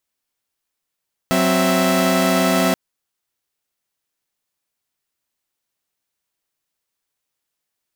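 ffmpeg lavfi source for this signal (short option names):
-f lavfi -i "aevalsrc='0.15*((2*mod(185*t,1)-1)+(2*mod(261.63*t,1)-1)+(2*mod(659.26*t,1)-1))':d=1.43:s=44100"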